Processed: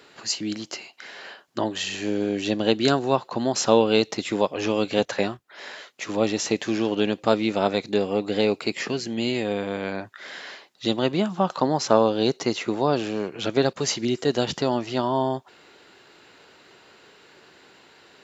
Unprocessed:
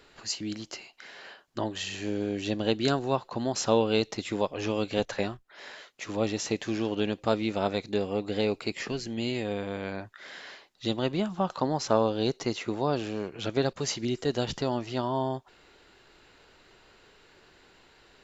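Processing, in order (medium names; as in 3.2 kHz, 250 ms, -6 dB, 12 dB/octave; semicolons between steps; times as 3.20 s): high-pass 140 Hz 12 dB/octave; trim +6 dB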